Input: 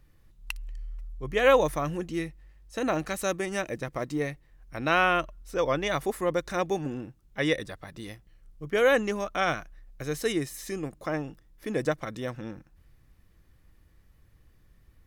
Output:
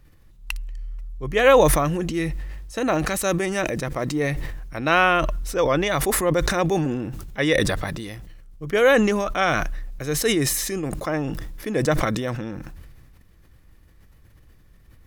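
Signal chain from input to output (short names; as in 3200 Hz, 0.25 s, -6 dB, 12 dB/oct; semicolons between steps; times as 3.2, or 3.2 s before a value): sustainer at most 31 dB/s; gain +5 dB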